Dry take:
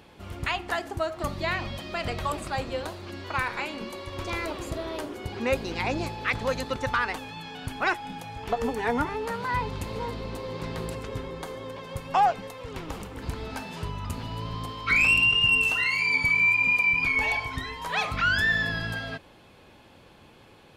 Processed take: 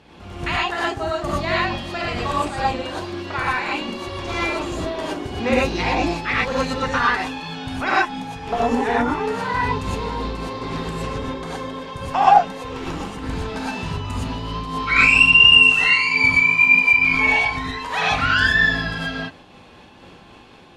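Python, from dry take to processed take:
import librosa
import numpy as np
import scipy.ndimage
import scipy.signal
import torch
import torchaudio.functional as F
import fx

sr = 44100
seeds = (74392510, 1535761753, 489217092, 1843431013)

y = scipy.signal.sosfilt(scipy.signal.butter(2, 7600.0, 'lowpass', fs=sr, output='sos'), x)
y = fx.rev_gated(y, sr, seeds[0], gate_ms=140, shape='rising', drr_db=-6.0)
y = fx.am_noise(y, sr, seeds[1], hz=5.7, depth_pct=50)
y = F.gain(torch.from_numpy(y), 3.5).numpy()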